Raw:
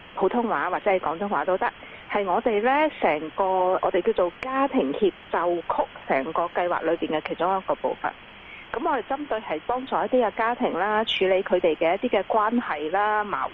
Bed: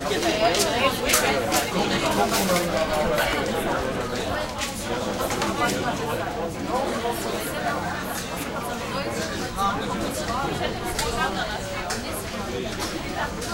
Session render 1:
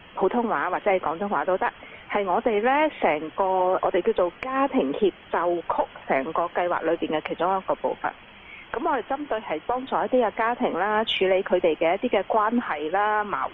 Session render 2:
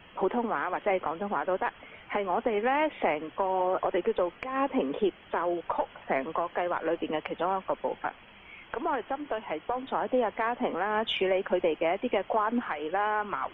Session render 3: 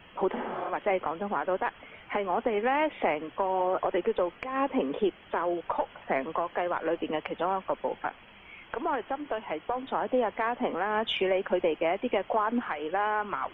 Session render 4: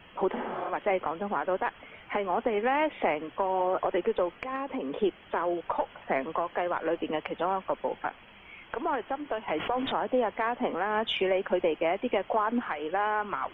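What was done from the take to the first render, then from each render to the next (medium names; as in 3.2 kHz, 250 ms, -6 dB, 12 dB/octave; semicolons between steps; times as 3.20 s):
noise reduction 6 dB, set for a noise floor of -45 dBFS
trim -5.5 dB
0.38–0.67 s: spectral replace 210–3400 Hz both
4.55–4.99 s: compression, threshold -29 dBFS; 9.48–9.92 s: level flattener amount 70%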